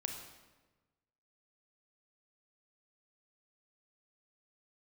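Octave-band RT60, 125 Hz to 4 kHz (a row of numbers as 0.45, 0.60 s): 1.6, 1.4, 1.3, 1.2, 1.1, 0.90 s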